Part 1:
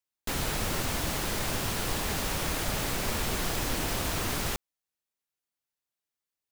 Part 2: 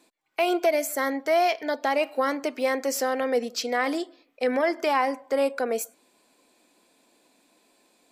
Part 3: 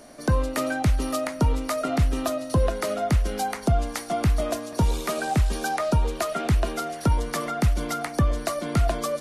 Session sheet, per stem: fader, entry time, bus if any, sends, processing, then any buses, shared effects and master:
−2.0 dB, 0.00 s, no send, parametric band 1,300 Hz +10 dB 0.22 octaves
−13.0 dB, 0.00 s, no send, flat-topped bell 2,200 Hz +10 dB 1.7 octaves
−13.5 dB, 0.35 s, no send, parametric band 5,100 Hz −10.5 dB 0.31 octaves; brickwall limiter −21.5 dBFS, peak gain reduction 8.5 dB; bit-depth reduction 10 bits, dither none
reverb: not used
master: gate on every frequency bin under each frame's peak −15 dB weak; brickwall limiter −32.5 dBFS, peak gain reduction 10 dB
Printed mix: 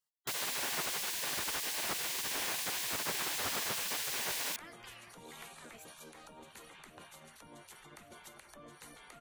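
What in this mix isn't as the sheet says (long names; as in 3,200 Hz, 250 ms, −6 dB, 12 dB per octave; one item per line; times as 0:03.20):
stem 2 −13.0 dB → −23.0 dB
stem 3: missing bit-depth reduction 10 bits, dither none
master: missing brickwall limiter −32.5 dBFS, peak gain reduction 10 dB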